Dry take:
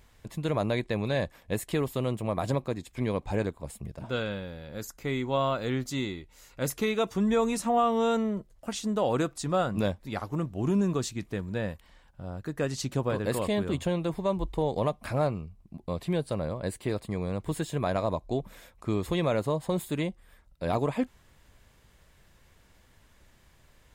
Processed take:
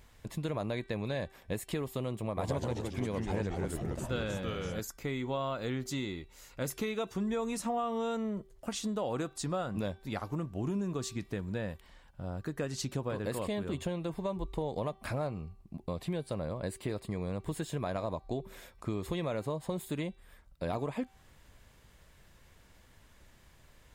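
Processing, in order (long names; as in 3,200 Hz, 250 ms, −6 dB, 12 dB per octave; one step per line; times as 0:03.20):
hum removal 386.4 Hz, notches 14
downward compressor 3 to 1, threshold −33 dBFS, peak gain reduction 9.5 dB
0:02.26–0:04.80: delay with pitch and tempo change per echo 111 ms, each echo −2 semitones, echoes 3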